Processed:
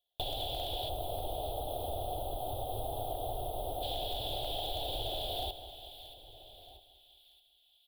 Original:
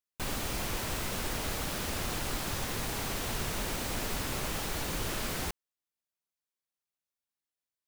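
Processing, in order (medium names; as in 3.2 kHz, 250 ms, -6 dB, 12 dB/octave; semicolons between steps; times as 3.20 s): FFT filter 120 Hz 0 dB, 180 Hz -24 dB, 290 Hz -6 dB, 500 Hz +2 dB, 730 Hz +13 dB, 1.1 kHz -20 dB, 2.1 kHz -25 dB, 3.4 kHz +15 dB, 6.2 kHz -28 dB, 11 kHz -4 dB; echo from a far wall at 220 m, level -28 dB; time-frequency box 0.89–3.83 s, 1.4–8.1 kHz -16 dB; hard clipper -24 dBFS, distortion -33 dB; compression, threshold -41 dBFS, peak gain reduction 11.5 dB; on a send: two-band feedback delay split 1.6 kHz, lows 197 ms, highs 630 ms, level -12 dB; on the sum: trim +6.5 dB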